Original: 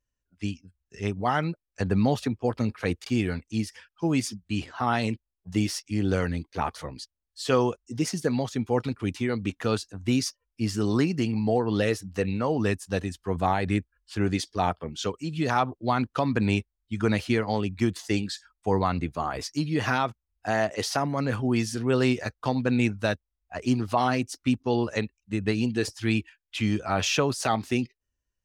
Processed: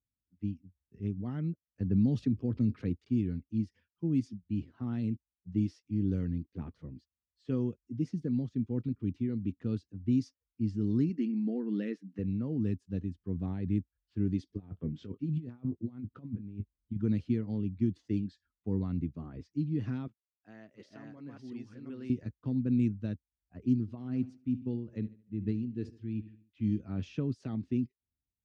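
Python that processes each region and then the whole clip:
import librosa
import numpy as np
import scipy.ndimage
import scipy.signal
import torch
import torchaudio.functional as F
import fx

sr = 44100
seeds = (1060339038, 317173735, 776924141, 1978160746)

y = fx.chain(x, sr, fx.highpass(hz=45.0, slope=12),
    fx.env_flatten(amount_pct=50), at=(1.9, 2.89))
y = fx.chain(y, sr, fx.brickwall_highpass(low_hz=180.0),
    fx.peak_eq(hz=1900.0, db=8.5, octaves=1.1), at=(11.09, 12.19))
y = fx.chain(y, sr, fx.over_compress(threshold_db=-31.0, ratio=-0.5),
    fx.doubler(ms=20.0, db=-11.5),
    fx.resample_linear(factor=4), at=(14.49, 16.97))
y = fx.chain(y, sr, fx.reverse_delay(ms=365, wet_db=-0.5),
    fx.highpass(hz=1400.0, slope=6), at=(20.07, 22.1))
y = fx.chain(y, sr, fx.echo_feedback(ms=74, feedback_pct=52, wet_db=-18.5),
    fx.tremolo(hz=2.4, depth=0.6), at=(23.8, 26.81))
y = fx.curve_eq(y, sr, hz=(270.0, 780.0, 6200.0), db=(0, -26, -16))
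y = fx.env_lowpass(y, sr, base_hz=2100.0, full_db=-13.5)
y = scipy.signal.sosfilt(scipy.signal.butter(2, 72.0, 'highpass', fs=sr, output='sos'), y)
y = y * 10.0 ** (-3.0 / 20.0)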